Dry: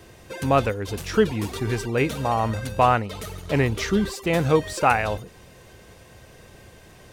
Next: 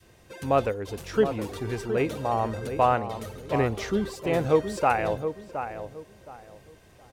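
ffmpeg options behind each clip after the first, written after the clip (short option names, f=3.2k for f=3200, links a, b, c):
-filter_complex "[0:a]adynamicequalizer=threshold=0.0282:dfrequency=530:dqfactor=0.7:tfrequency=530:tqfactor=0.7:attack=5:release=100:ratio=0.375:range=3.5:mode=boostabove:tftype=bell,asplit=2[a][b];[b]adelay=719,lowpass=f=1.5k:p=1,volume=-8.5dB,asplit=2[c][d];[d]adelay=719,lowpass=f=1.5k:p=1,volume=0.26,asplit=2[e][f];[f]adelay=719,lowpass=f=1.5k:p=1,volume=0.26[g];[a][c][e][g]amix=inputs=4:normalize=0,volume=-8dB"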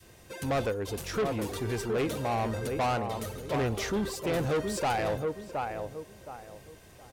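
-af "highshelf=f=6k:g=6.5,asoftclip=type=tanh:threshold=-25.5dB,volume=1dB"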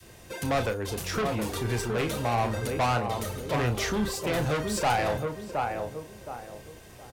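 -filter_complex "[0:a]acrossover=split=230|540|6000[a][b][c][d];[b]acompressor=threshold=-42dB:ratio=6[e];[a][e][c][d]amix=inputs=4:normalize=0,asplit=2[f][g];[g]adelay=33,volume=-8.5dB[h];[f][h]amix=inputs=2:normalize=0,volume=4dB"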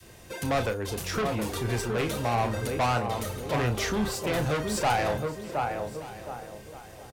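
-af "aecho=1:1:1173:0.126"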